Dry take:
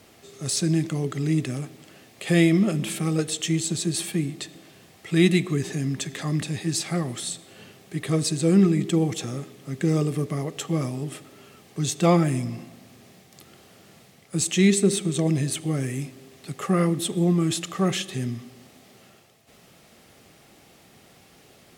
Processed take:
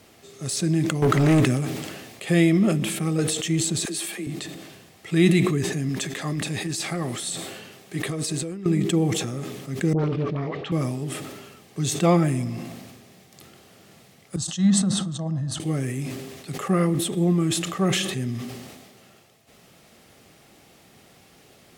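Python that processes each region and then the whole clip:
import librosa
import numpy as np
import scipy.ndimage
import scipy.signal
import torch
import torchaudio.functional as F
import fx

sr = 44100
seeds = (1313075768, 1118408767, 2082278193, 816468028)

y = fx.chain(x, sr, fx.peak_eq(hz=1100.0, db=10.0, octaves=1.6),
    fx.leveller(passes=3), at=(1.02, 1.45))
y = fx.chain(y, sr, fx.highpass(hz=210.0, slope=24),
    fx.low_shelf(hz=470.0, db=-8.0),
    fx.dispersion(late='lows', ms=46.0, hz=540.0), at=(3.85, 4.27))
y = fx.chain(y, sr, fx.low_shelf(hz=200.0, db=-7.0),
    fx.over_compress(threshold_db=-28.0, ratio=-1.0), at=(5.89, 8.66))
y = fx.chain(y, sr, fx.lowpass(hz=3800.0, slope=24),
    fx.dispersion(late='highs', ms=63.0, hz=690.0),
    fx.doppler_dist(depth_ms=0.36), at=(9.93, 10.72))
y = fx.chain(y, sr, fx.lowpass(hz=4700.0, slope=12),
    fx.fixed_phaser(hz=960.0, stages=4),
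    fx.band_widen(depth_pct=100), at=(14.36, 15.6))
y = fx.dynamic_eq(y, sr, hz=5200.0, q=0.71, threshold_db=-43.0, ratio=4.0, max_db=-3)
y = fx.sustainer(y, sr, db_per_s=39.0)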